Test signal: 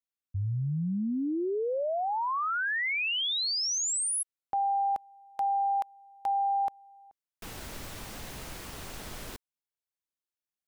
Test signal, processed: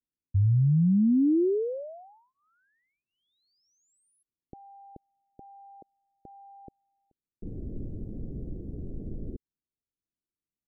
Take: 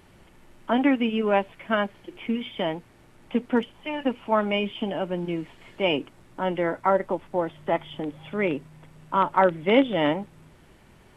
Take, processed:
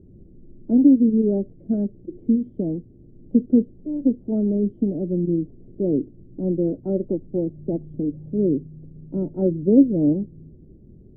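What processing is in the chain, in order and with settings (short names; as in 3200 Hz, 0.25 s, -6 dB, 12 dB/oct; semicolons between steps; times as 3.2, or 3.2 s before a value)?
inverse Chebyshev low-pass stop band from 1000 Hz, stop band 50 dB; gain +8.5 dB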